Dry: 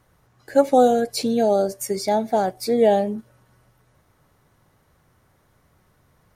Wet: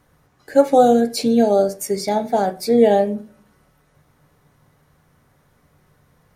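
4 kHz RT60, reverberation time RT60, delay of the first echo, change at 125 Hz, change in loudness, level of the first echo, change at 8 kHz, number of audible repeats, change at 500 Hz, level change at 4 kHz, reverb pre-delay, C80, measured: 0.60 s, 0.40 s, no echo audible, +3.0 dB, +3.0 dB, no echo audible, +1.5 dB, no echo audible, +3.0 dB, +1.5 dB, 3 ms, 22.0 dB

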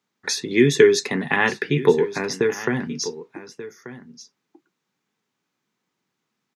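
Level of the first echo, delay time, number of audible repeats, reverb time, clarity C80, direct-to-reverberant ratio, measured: −15.0 dB, 1,185 ms, 1, no reverb audible, no reverb audible, no reverb audible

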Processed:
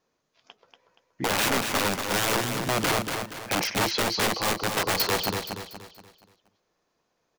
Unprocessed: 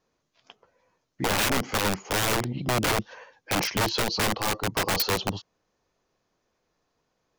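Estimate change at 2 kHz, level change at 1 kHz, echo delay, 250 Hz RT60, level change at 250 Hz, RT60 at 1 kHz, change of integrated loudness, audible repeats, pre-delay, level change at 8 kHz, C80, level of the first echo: +1.0 dB, +1.0 dB, 237 ms, no reverb audible, 0.0 dB, no reverb audible, +0.5 dB, 4, no reverb audible, +1.0 dB, no reverb audible, −6.0 dB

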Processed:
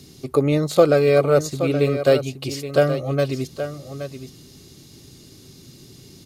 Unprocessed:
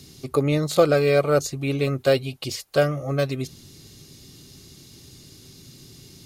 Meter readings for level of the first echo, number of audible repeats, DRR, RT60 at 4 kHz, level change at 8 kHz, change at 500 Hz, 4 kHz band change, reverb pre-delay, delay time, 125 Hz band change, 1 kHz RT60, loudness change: −10.5 dB, 1, no reverb audible, no reverb audible, −0.5 dB, +3.5 dB, −0.5 dB, no reverb audible, 823 ms, +2.0 dB, no reverb audible, +2.5 dB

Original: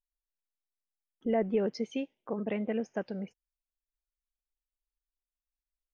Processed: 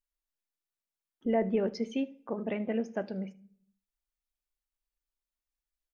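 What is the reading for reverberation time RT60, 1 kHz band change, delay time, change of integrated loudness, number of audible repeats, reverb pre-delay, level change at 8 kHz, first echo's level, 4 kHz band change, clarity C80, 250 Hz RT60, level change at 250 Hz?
0.45 s, +1.0 dB, 77 ms, +0.5 dB, 1, 3 ms, can't be measured, −23.5 dB, 0.0 dB, 25.5 dB, 0.75 s, +1.0 dB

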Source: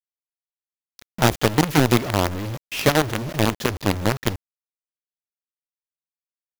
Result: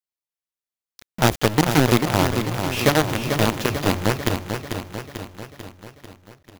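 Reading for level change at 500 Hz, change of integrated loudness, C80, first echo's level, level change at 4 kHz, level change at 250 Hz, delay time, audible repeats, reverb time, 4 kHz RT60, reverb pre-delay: +1.0 dB, +0.5 dB, no reverb audible, −7.0 dB, +1.0 dB, +1.0 dB, 443 ms, 6, no reverb audible, no reverb audible, no reverb audible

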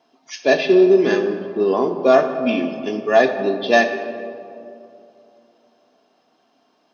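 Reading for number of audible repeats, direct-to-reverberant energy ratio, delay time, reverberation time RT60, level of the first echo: no echo audible, 6.0 dB, no echo audible, 2.7 s, no echo audible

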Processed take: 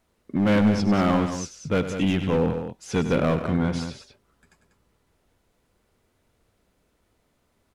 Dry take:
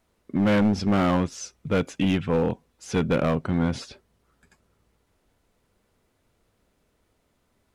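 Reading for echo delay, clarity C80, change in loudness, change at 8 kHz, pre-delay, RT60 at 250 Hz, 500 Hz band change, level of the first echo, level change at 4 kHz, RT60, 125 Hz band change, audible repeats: 97 ms, no reverb audible, +0.5 dB, +1.0 dB, no reverb audible, no reverb audible, +1.0 dB, −11.5 dB, +0.5 dB, no reverb audible, +1.0 dB, 2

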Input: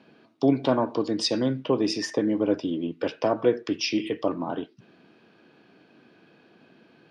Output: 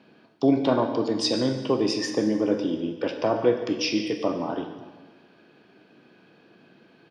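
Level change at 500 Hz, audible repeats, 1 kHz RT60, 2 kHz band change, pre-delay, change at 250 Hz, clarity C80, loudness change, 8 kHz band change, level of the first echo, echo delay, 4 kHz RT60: +1.0 dB, 1, 1.4 s, +1.0 dB, 7 ms, +1.0 dB, 8.5 dB, +1.0 dB, +1.0 dB, −17.5 dB, 143 ms, 1.3 s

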